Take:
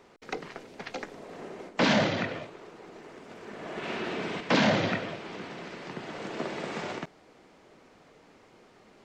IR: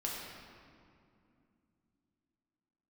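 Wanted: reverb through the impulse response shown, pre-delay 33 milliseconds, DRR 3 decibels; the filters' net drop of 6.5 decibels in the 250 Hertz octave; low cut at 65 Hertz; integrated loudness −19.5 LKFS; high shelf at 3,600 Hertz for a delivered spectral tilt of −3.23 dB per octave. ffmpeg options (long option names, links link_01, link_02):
-filter_complex "[0:a]highpass=65,equalizer=frequency=250:width_type=o:gain=-8.5,highshelf=frequency=3600:gain=8,asplit=2[link_01][link_02];[1:a]atrim=start_sample=2205,adelay=33[link_03];[link_02][link_03]afir=irnorm=-1:irlink=0,volume=-5.5dB[link_04];[link_01][link_04]amix=inputs=2:normalize=0,volume=9.5dB"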